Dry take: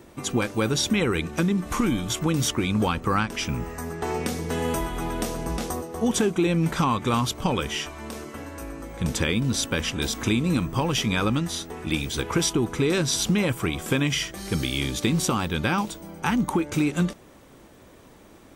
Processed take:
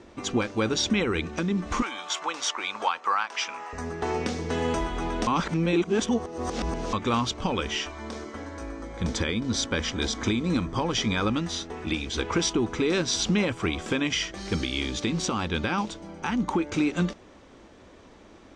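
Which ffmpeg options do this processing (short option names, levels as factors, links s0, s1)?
-filter_complex "[0:a]asettb=1/sr,asplit=3[s0][s1][s2];[s0]atrim=end=1.824[s3];[s1]atrim=start=1.82:end=3.73,asetpts=PTS-STARTPTS,afade=t=in:d=0.004:c=qsin,afade=t=out:st=1.906:d=0.004:c=qsin,highpass=f=880:t=q:w=1.7[s4];[s2]atrim=start=3.726[s5];[s3][s4]acrossfade=d=0.004:c1=hsin:c2=qsin[s6];[s6][s5]acrossfade=d=0.004:c1=qsin:c2=hsin,asettb=1/sr,asplit=3[s7][s8][s9];[s7]atrim=end=7.924[s10];[s8]atrim=start=7.92:end=11.28,asetpts=PTS-STARTPTS,afade=t=in:d=0.004:c=qsin,afade=t=out:st=3.356:d=0.004:c=qsin,bandreject=f=2700:w=7.5[s11];[s9]atrim=start=11.276[s12];[s10][s11]acrossfade=d=0.004:c1=hsin:c2=qsin[s13];[s13][s12]acrossfade=d=0.004:c1=qsin:c2=hsin,asplit=3[s14][s15][s16];[s14]atrim=end=5.272[s17];[s15]atrim=start=5.268:end=6.932,asetpts=PTS-STARTPTS,areverse[s18];[s16]atrim=start=6.928[s19];[s17][s18]acrossfade=d=0.004:c1=hsin:c2=hsin[s20];[s20][s19]acrossfade=d=0.004:c1=hsin:c2=hsin,lowpass=f=6500:w=0.5412,lowpass=f=6500:w=1.3066,equalizer=f=140:t=o:w=0.27:g=-14,alimiter=limit=0.188:level=0:latency=1:release=231"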